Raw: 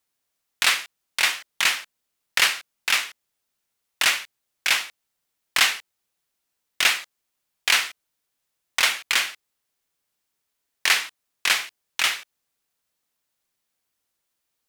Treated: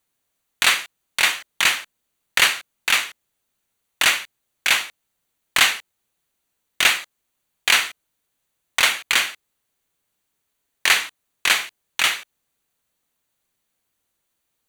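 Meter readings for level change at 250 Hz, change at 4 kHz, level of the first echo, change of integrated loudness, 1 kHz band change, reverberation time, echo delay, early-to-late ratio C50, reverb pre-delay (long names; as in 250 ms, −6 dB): +6.0 dB, +2.5 dB, no echo audible, +3.0 dB, +3.5 dB, no reverb audible, no echo audible, no reverb audible, no reverb audible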